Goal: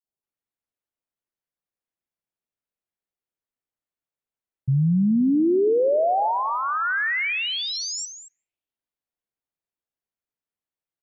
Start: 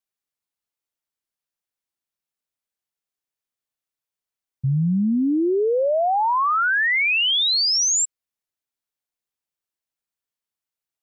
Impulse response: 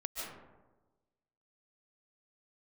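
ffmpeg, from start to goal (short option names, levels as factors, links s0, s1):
-filter_complex "[0:a]highshelf=f=2600:g=-11,acrossover=split=1100|5300[s0][s1][s2];[s0]adelay=40[s3];[s1]adelay=230[s4];[s3][s4][s2]amix=inputs=3:normalize=0,asplit=2[s5][s6];[1:a]atrim=start_sample=2205,lowpass=2300,lowshelf=f=190:g=-10.5[s7];[s6][s7]afir=irnorm=-1:irlink=0,volume=0.237[s8];[s5][s8]amix=inputs=2:normalize=0"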